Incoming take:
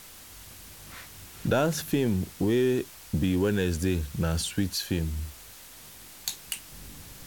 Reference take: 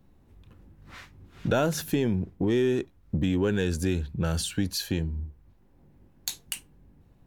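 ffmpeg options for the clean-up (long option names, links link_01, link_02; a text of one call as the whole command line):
ffmpeg -i in.wav -af "afwtdn=0.0045,asetnsamples=nb_out_samples=441:pad=0,asendcmd='6.72 volume volume -9dB',volume=0dB" out.wav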